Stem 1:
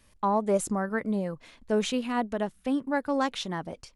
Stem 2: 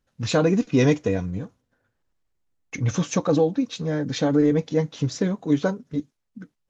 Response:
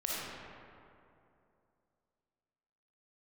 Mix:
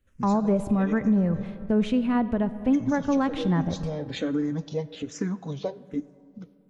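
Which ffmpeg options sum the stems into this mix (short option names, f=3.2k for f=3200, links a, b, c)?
-filter_complex "[0:a]agate=range=-33dB:threshold=-48dB:ratio=3:detection=peak,bass=f=250:g=15,treble=f=4k:g=-15,volume=1dB,asplit=3[a][b][c];[b]volume=-18dB[d];[1:a]acompressor=threshold=-32dB:ratio=2,asplit=2[e][f];[f]afreqshift=-1.2[g];[e][g]amix=inputs=2:normalize=1,volume=2.5dB,asplit=2[h][i];[i]volume=-22.5dB[j];[c]apad=whole_len=295458[k];[h][k]sidechaincompress=threshold=-26dB:ratio=8:attack=16:release=594[l];[2:a]atrim=start_sample=2205[m];[d][j]amix=inputs=2:normalize=0[n];[n][m]afir=irnorm=-1:irlink=0[o];[a][l][o]amix=inputs=3:normalize=0,alimiter=limit=-14.5dB:level=0:latency=1:release=234"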